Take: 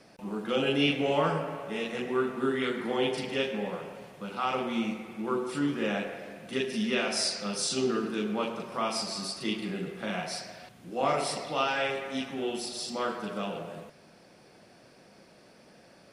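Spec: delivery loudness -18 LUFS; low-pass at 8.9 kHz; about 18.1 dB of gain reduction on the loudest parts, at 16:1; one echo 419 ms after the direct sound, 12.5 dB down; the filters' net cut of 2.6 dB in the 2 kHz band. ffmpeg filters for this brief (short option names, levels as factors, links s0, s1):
-af "lowpass=8900,equalizer=f=2000:t=o:g=-3.5,acompressor=threshold=0.00891:ratio=16,aecho=1:1:419:0.237,volume=22.4"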